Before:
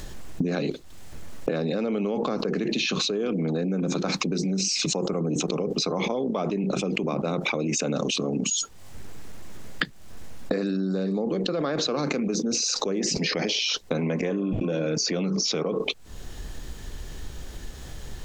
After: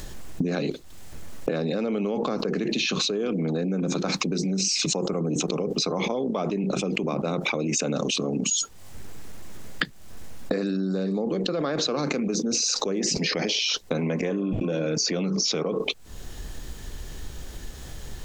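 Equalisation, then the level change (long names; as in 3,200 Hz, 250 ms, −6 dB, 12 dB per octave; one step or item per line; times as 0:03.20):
high-shelf EQ 8,300 Hz +4.5 dB
0.0 dB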